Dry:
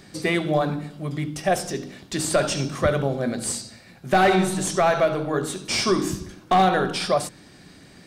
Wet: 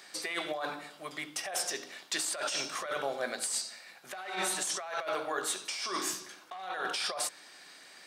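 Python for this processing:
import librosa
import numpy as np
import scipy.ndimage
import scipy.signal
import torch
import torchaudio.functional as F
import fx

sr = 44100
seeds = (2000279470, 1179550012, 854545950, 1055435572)

y = scipy.signal.sosfilt(scipy.signal.butter(2, 810.0, 'highpass', fs=sr, output='sos'), x)
y = fx.over_compress(y, sr, threshold_db=-31.0, ratio=-1.0)
y = F.gain(torch.from_numpy(y), -4.0).numpy()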